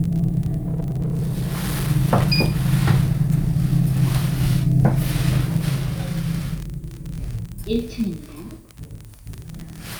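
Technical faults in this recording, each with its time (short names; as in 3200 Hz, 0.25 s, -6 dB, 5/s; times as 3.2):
crackle 34/s -24 dBFS
0.63–1.89 clipped -19.5 dBFS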